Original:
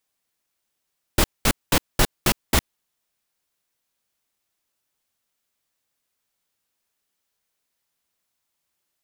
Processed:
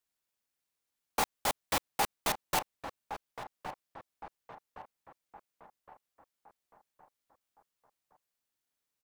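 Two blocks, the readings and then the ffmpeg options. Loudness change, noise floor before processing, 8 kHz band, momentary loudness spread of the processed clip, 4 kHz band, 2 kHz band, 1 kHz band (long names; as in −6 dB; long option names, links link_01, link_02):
−12.0 dB, −79 dBFS, −10.5 dB, 21 LU, −11.0 dB, −9.5 dB, −3.0 dB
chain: -filter_complex "[0:a]asplit=2[link_01][link_02];[link_02]adelay=1115,lowpass=frequency=1300:poles=1,volume=-11.5dB,asplit=2[link_03][link_04];[link_04]adelay=1115,lowpass=frequency=1300:poles=1,volume=0.47,asplit=2[link_05][link_06];[link_06]adelay=1115,lowpass=frequency=1300:poles=1,volume=0.47,asplit=2[link_07][link_08];[link_08]adelay=1115,lowpass=frequency=1300:poles=1,volume=0.47,asplit=2[link_09][link_10];[link_10]adelay=1115,lowpass=frequency=1300:poles=1,volume=0.47[link_11];[link_01][link_03][link_05][link_07][link_09][link_11]amix=inputs=6:normalize=0,aeval=exprs='val(0)*sin(2*PI*820*n/s)':channel_layout=same,asoftclip=type=tanh:threshold=-13.5dB,volume=-6dB"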